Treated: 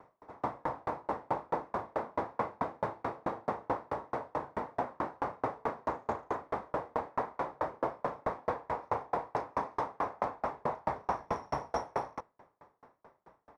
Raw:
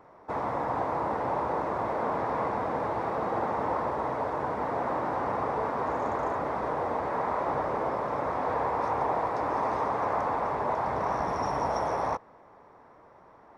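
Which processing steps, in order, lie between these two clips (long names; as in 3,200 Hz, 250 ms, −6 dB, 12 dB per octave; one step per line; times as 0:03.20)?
double-tracking delay 36 ms −4 dB
tremolo with a ramp in dB decaying 4.6 Hz, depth 39 dB
level +1 dB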